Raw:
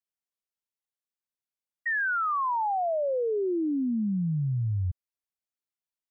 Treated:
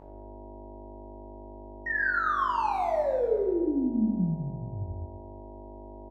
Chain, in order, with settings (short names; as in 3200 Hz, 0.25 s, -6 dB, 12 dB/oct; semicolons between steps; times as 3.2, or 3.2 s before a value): Wiener smoothing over 25 samples; bell 120 Hz -13.5 dB 0.55 oct; buzz 50 Hz, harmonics 19, -48 dBFS -1 dB/oct; doubler 23 ms -7 dB; plate-style reverb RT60 1.3 s, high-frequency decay 0.65×, DRR -0.5 dB; gain -2.5 dB